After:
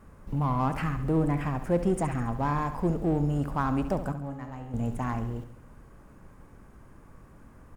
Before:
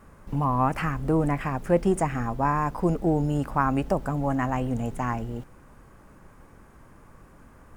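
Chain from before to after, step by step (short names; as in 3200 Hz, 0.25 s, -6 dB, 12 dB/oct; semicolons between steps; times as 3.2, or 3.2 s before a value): low shelf 410 Hz +5 dB; in parallel at -6 dB: overloaded stage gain 25 dB; 4.12–4.74 on the sum: resonator 70 Hz, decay 1.4 s, harmonics all, mix 80%; feedback echo 69 ms, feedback 53%, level -11 dB; gain -8 dB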